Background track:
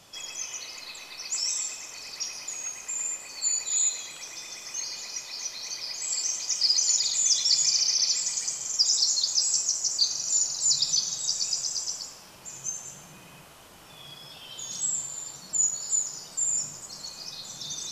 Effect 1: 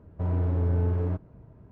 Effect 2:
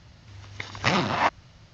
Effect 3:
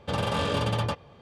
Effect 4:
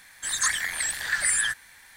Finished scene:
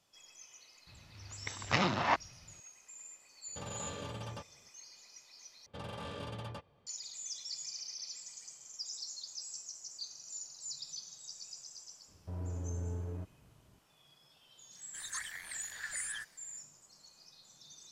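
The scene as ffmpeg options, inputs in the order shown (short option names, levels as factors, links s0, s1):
-filter_complex "[3:a]asplit=2[s0][s1];[0:a]volume=0.1,asplit=2[s2][s3];[s2]atrim=end=5.664[s4];[s1]atrim=end=1.21,asetpts=PTS-STARTPTS,volume=0.15[s5];[s3]atrim=start=6.866[s6];[2:a]atrim=end=1.73,asetpts=PTS-STARTPTS,volume=0.447,afade=t=in:d=0.004:c=hsin,afade=t=out:st=1.726:d=0.004:c=hsin,adelay=870[s7];[s0]atrim=end=1.21,asetpts=PTS-STARTPTS,volume=0.15,afade=t=in:d=0.004:c=hsin,afade=t=out:st=1.206:d=0.004:c=hsin,adelay=3480[s8];[1:a]atrim=end=1.71,asetpts=PTS-STARTPTS,volume=0.211,afade=t=in:d=0.004:c=hsin,afade=t=out:st=1.706:d=0.004:c=hsin,adelay=12080[s9];[4:a]atrim=end=1.96,asetpts=PTS-STARTPTS,volume=0.15,afade=t=in:d=0.1,afade=t=out:st=1.86:d=0.1,adelay=14710[s10];[s4][s5]acrossfade=d=0.004:c1=hsin:c2=hsin[s11];[s11][s6]acrossfade=d=0.004:c1=hsin:c2=hsin[s12];[s12][s7][s8][s9][s10]amix=inputs=5:normalize=0"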